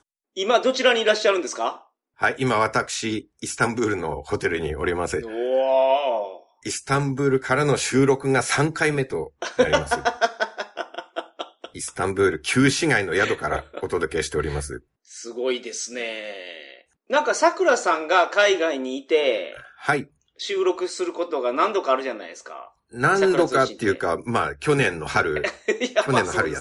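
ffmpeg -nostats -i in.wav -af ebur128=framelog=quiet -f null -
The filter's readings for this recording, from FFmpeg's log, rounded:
Integrated loudness:
  I:         -22.3 LUFS
  Threshold: -32.9 LUFS
Loudness range:
  LRA:         4.0 LU
  Threshold: -43.0 LUFS
  LRA low:   -25.3 LUFS
  LRA high:  -21.3 LUFS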